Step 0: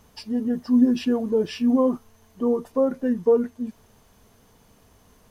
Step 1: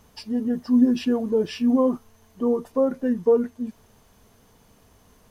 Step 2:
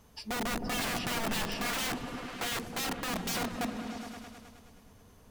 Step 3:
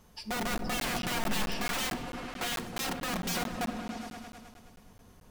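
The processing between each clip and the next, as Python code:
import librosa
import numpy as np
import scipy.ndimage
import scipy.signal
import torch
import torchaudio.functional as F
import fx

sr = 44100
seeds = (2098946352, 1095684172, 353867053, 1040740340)

y1 = x
y2 = (np.mod(10.0 ** (24.5 / 20.0) * y1 + 1.0, 2.0) - 1.0) / 10.0 ** (24.5 / 20.0)
y2 = fx.echo_opening(y2, sr, ms=105, hz=200, octaves=1, feedback_pct=70, wet_db=0)
y2 = y2 * librosa.db_to_amplitude(-4.5)
y3 = fx.room_shoebox(y2, sr, seeds[0], volume_m3=3000.0, walls='furnished', distance_m=0.96)
y3 = fx.buffer_crackle(y3, sr, first_s=0.58, period_s=0.22, block=512, kind='zero')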